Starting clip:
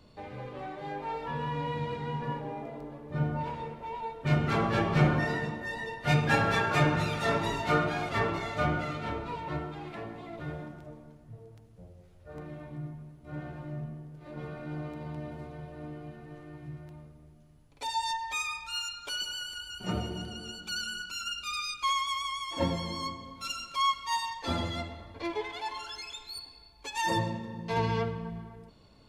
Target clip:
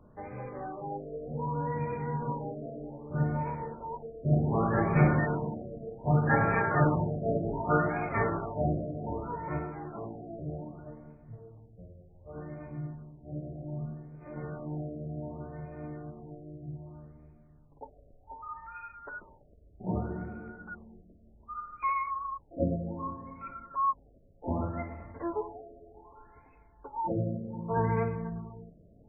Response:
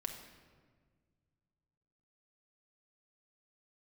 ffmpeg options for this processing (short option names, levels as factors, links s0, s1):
-filter_complex "[0:a]highshelf=f=3500:g=-9.5,asplit=2[s0][s1];[1:a]atrim=start_sample=2205[s2];[s1][s2]afir=irnorm=-1:irlink=0,volume=0.168[s3];[s0][s3]amix=inputs=2:normalize=0,afftfilt=real='re*lt(b*sr/1024,690*pow(2600/690,0.5+0.5*sin(2*PI*0.65*pts/sr)))':imag='im*lt(b*sr/1024,690*pow(2600/690,0.5+0.5*sin(2*PI*0.65*pts/sr)))':win_size=1024:overlap=0.75"